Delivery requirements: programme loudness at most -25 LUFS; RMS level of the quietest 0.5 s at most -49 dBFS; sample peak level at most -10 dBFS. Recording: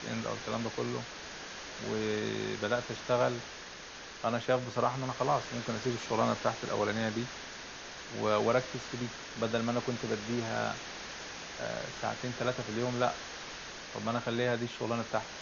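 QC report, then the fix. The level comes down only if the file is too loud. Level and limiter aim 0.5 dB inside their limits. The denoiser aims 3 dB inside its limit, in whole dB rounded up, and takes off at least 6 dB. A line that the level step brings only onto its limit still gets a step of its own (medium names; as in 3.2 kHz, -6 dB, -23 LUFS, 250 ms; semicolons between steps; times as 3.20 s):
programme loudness -34.0 LUFS: pass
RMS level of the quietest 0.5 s -47 dBFS: fail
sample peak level -15.0 dBFS: pass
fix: noise reduction 6 dB, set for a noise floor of -47 dBFS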